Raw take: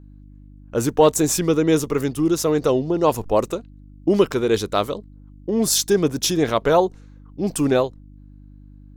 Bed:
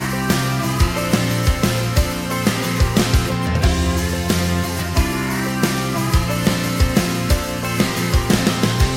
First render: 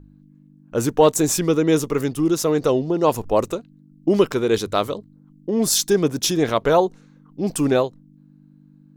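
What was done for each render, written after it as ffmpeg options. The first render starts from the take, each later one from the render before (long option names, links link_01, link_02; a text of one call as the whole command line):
ffmpeg -i in.wav -af "bandreject=frequency=50:width_type=h:width=4,bandreject=frequency=100:width_type=h:width=4" out.wav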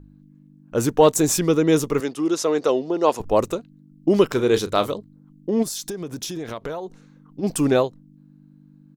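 ffmpeg -i in.wav -filter_complex "[0:a]asettb=1/sr,asplit=3[link_01][link_02][link_03];[link_01]atrim=end=2.004[link_04];[link_02]atrim=start=2:end=3.2,asetpts=PTS-STARTPTS,afade=type=in:duration=0.004:curve=qsin,afade=type=out:start_time=1.196:duration=0.004:curve=qsin,highpass=310,lowpass=8000[link_05];[link_03]atrim=start=3.196[link_06];[link_04][link_05]acrossfade=duration=0.004:curve1=hsin:curve2=qsin[link_07];[link_07][link_06]acrossfade=duration=0.004:curve1=qsin:curve2=hsin,asplit=3[link_08][link_09][link_10];[link_08]afade=type=out:start_time=4.29:duration=0.02[link_11];[link_09]asplit=2[link_12][link_13];[link_13]adelay=33,volume=-11.5dB[link_14];[link_12][link_14]amix=inputs=2:normalize=0,afade=type=in:start_time=4.29:duration=0.02,afade=type=out:start_time=4.9:duration=0.02[link_15];[link_10]afade=type=in:start_time=4.9:duration=0.02[link_16];[link_11][link_15][link_16]amix=inputs=3:normalize=0,asplit=3[link_17][link_18][link_19];[link_17]afade=type=out:start_time=5.62:duration=0.02[link_20];[link_18]acompressor=threshold=-26dB:ratio=16:attack=3.2:release=140:knee=1:detection=peak,afade=type=in:start_time=5.62:duration=0.02,afade=type=out:start_time=7.42:duration=0.02[link_21];[link_19]afade=type=in:start_time=7.42:duration=0.02[link_22];[link_20][link_21][link_22]amix=inputs=3:normalize=0" out.wav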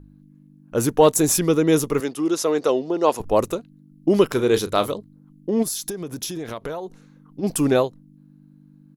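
ffmpeg -i in.wav -af "equalizer=frequency=11000:width=6:gain=12.5" out.wav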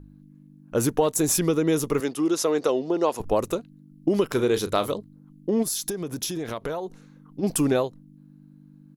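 ffmpeg -i in.wav -af "acompressor=threshold=-18dB:ratio=6" out.wav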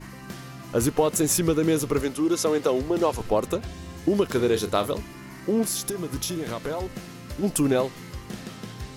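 ffmpeg -i in.wav -i bed.wav -filter_complex "[1:a]volume=-21dB[link_01];[0:a][link_01]amix=inputs=2:normalize=0" out.wav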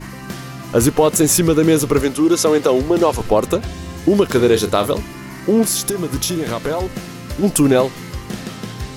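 ffmpeg -i in.wav -af "volume=9dB,alimiter=limit=-3dB:level=0:latency=1" out.wav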